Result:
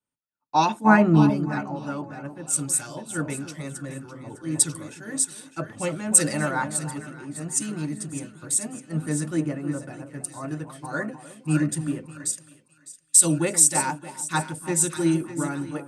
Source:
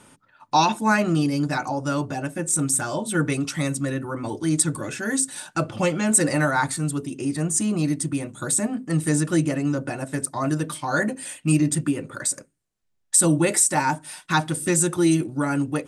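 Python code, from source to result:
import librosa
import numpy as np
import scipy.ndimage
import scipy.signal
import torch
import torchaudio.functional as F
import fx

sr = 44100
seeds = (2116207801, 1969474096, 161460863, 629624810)

p1 = fx.low_shelf(x, sr, hz=430.0, db=6.5, at=(0.84, 1.3))
p2 = p1 + fx.echo_split(p1, sr, split_hz=1200.0, low_ms=311, high_ms=606, feedback_pct=52, wet_db=-8.0, dry=0)
p3 = fx.band_widen(p2, sr, depth_pct=100)
y = F.gain(torch.from_numpy(p3), -6.0).numpy()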